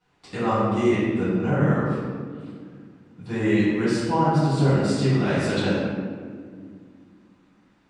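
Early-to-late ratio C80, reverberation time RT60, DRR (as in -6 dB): -0.5 dB, 2.0 s, -13.5 dB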